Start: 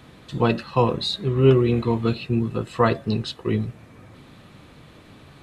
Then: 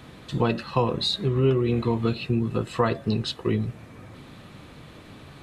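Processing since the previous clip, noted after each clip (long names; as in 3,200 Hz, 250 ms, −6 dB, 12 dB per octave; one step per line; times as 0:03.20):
downward compressor 2.5 to 1, threshold −23 dBFS, peak gain reduction 9 dB
level +2 dB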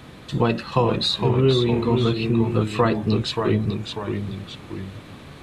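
delay with pitch and tempo change per echo 415 ms, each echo −1 semitone, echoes 2, each echo −6 dB
level +3 dB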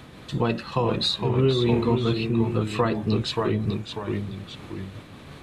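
amplitude modulation by smooth noise, depth 50%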